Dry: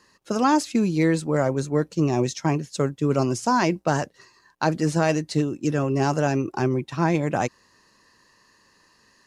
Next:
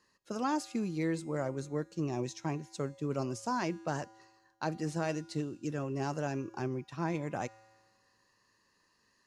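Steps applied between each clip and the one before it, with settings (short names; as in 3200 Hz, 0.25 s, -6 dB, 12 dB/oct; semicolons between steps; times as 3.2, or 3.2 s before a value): resonator 110 Hz, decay 1.5 s, harmonics odd, mix 60%; gain -5 dB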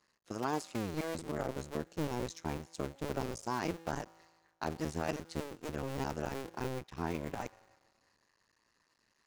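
cycle switcher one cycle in 2, muted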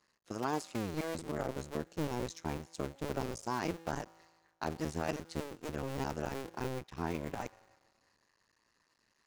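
nothing audible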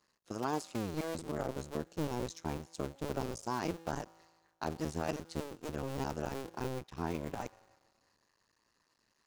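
bell 2000 Hz -3.5 dB 0.77 oct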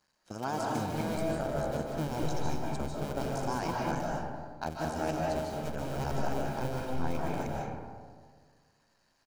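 comb 1.3 ms, depth 40%; reverb RT60 1.7 s, pre-delay 0.11 s, DRR -2.5 dB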